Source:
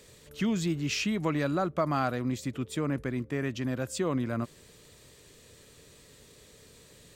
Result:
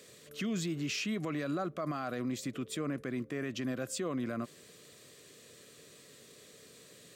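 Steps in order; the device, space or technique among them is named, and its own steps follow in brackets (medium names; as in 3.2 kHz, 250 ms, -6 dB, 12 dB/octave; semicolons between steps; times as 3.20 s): PA system with an anti-feedback notch (high-pass 150 Hz 12 dB/octave; Butterworth band-stop 890 Hz, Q 5.1; peak limiter -27 dBFS, peak gain reduction 10.5 dB); bass shelf 79 Hz -5 dB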